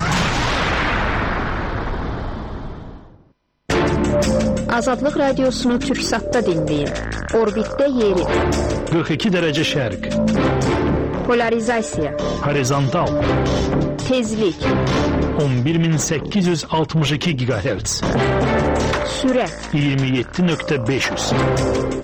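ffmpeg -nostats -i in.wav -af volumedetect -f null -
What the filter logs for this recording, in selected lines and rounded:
mean_volume: -18.5 dB
max_volume: -9.0 dB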